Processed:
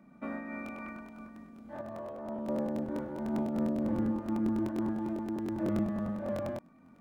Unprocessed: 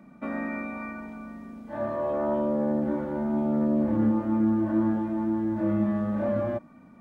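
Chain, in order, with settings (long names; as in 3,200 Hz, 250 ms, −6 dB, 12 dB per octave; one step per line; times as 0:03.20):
0:01.81–0:02.48: tuned comb filter 110 Hz, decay 0.31 s, harmonics all, mix 70%
regular buffer underruns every 0.10 s, samples 1,024, repeat, from 0:00.64
amplitude modulation by smooth noise, depth 55%
level −4.5 dB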